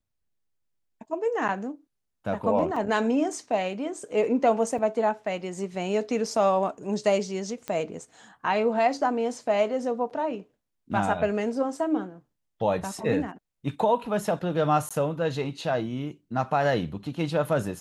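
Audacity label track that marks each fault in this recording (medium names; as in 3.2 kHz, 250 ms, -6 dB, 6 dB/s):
2.760000	2.760000	dropout 4.1 ms
4.780000	4.790000	dropout 5 ms
7.680000	7.680000	pop -18 dBFS
14.890000	14.910000	dropout 16 ms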